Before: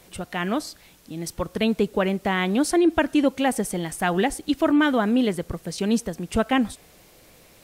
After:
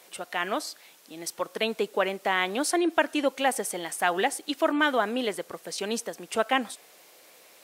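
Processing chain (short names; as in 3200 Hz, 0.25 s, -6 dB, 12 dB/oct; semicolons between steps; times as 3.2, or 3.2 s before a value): HPF 480 Hz 12 dB/oct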